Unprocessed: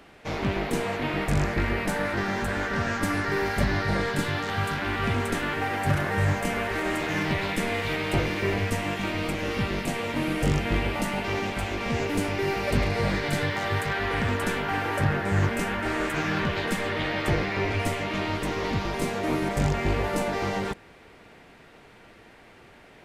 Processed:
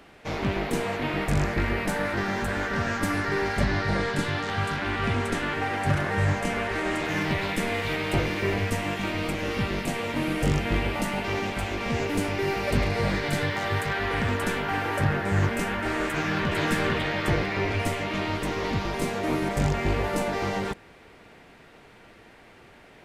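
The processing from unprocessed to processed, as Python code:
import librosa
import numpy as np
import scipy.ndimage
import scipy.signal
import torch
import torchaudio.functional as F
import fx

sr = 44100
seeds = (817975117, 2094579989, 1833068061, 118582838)

y = fx.lowpass(x, sr, hz=9800.0, slope=12, at=(3.29, 7.05))
y = fx.echo_throw(y, sr, start_s=16.06, length_s=0.47, ms=450, feedback_pct=35, wet_db=-2.0)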